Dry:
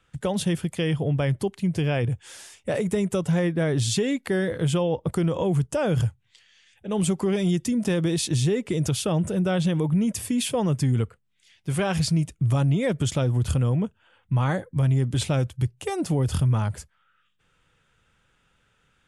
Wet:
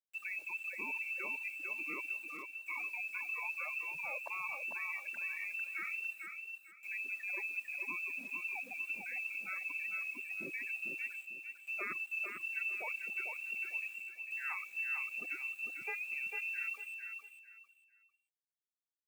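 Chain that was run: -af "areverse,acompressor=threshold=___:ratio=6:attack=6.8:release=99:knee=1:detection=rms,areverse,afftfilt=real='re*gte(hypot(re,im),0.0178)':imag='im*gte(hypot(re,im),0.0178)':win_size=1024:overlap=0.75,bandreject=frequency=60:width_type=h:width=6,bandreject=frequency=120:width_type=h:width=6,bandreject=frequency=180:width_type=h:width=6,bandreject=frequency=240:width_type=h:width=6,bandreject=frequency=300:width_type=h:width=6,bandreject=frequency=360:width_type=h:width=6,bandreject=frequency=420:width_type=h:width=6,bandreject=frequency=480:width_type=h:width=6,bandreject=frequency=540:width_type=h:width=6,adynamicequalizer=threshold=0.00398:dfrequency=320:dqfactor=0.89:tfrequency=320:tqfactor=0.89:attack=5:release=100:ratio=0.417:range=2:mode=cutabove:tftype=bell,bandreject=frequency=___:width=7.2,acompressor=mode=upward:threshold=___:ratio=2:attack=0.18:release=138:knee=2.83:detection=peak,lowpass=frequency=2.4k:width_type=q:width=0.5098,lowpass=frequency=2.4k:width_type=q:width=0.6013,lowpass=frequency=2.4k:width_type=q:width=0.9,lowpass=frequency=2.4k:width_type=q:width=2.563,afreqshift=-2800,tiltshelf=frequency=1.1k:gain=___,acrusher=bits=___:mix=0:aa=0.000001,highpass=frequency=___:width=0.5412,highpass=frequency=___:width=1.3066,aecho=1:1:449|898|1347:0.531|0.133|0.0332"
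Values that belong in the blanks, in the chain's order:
-32dB, 690, -37dB, 8, 9, 190, 190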